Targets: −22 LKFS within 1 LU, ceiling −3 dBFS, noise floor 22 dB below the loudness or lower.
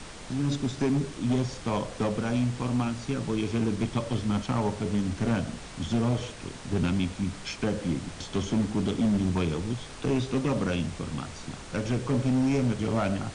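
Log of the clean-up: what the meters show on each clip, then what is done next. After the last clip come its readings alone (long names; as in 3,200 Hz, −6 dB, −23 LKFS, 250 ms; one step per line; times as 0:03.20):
background noise floor −42 dBFS; target noise floor −51 dBFS; integrated loudness −29.0 LKFS; sample peak −18.0 dBFS; target loudness −22.0 LKFS
→ noise reduction from a noise print 9 dB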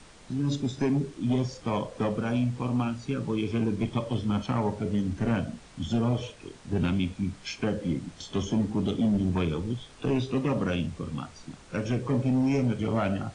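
background noise floor −51 dBFS; integrated loudness −29.0 LKFS; sample peak −18.0 dBFS; target loudness −22.0 LKFS
→ level +7 dB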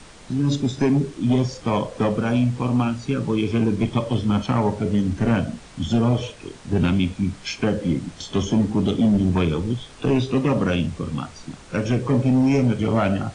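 integrated loudness −22.0 LKFS; sample peak −11.0 dBFS; background noise floor −44 dBFS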